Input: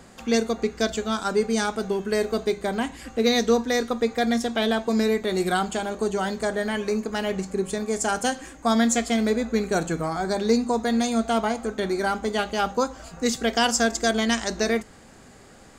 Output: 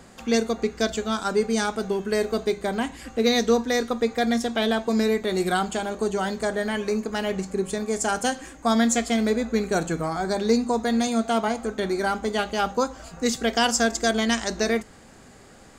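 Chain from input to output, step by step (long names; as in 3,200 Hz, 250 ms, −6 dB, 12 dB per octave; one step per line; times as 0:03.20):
0:11.07–0:11.48: high-pass filter 100 Hz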